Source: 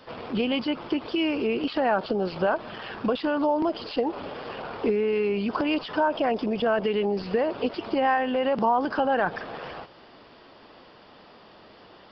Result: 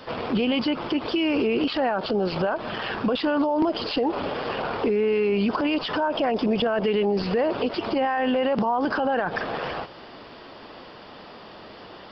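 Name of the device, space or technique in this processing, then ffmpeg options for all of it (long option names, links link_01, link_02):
stacked limiters: -af "alimiter=limit=-18.5dB:level=0:latency=1:release=125,alimiter=limit=-23dB:level=0:latency=1:release=50,volume=7.5dB"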